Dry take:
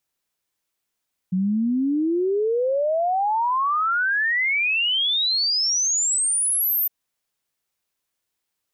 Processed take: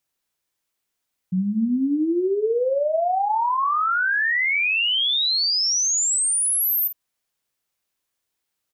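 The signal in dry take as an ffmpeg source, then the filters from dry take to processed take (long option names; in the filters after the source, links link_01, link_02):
-f lavfi -i "aevalsrc='0.119*clip(min(t,5.56-t)/0.01,0,1)*sin(2*PI*180*5.56/log(14000/180)*(exp(log(14000/180)*t/5.56)-1))':duration=5.56:sample_rate=44100"
-filter_complex "[0:a]asplit=2[link_01][link_02];[link_02]adelay=49,volume=-10.5dB[link_03];[link_01][link_03]amix=inputs=2:normalize=0,bandreject=frequency=207.6:width_type=h:width=4,bandreject=frequency=415.2:width_type=h:width=4,bandreject=frequency=622.8:width_type=h:width=4,bandreject=frequency=830.4:width_type=h:width=4,bandreject=frequency=1038:width_type=h:width=4"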